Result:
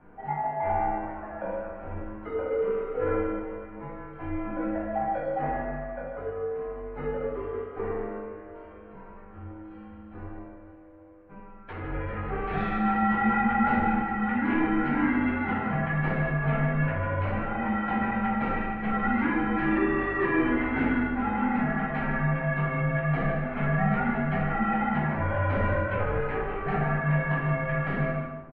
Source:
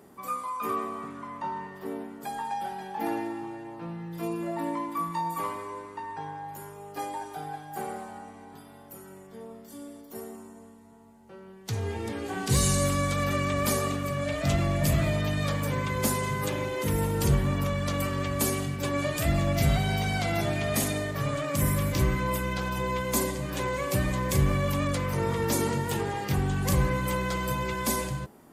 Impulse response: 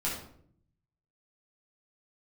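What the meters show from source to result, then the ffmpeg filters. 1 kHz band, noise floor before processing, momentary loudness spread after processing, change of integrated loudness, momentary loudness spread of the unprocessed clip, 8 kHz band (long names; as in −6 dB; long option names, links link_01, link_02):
+3.0 dB, −50 dBFS, 15 LU, +1.0 dB, 16 LU, below −40 dB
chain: -filter_complex "[0:a]asplit=2[link_01][link_02];[link_02]adelay=151.6,volume=-9dB,highshelf=frequency=4000:gain=-3.41[link_03];[link_01][link_03]amix=inputs=2:normalize=0,highpass=frequency=540:width_type=q:width=0.5412,highpass=frequency=540:width_type=q:width=1.307,lowpass=frequency=2500:width_type=q:width=0.5176,lowpass=frequency=2500:width_type=q:width=0.7071,lowpass=frequency=2500:width_type=q:width=1.932,afreqshift=-360[link_04];[1:a]atrim=start_sample=2205,afade=type=out:start_time=0.36:duration=0.01,atrim=end_sample=16317[link_05];[link_04][link_05]afir=irnorm=-1:irlink=0,volume=1.5dB"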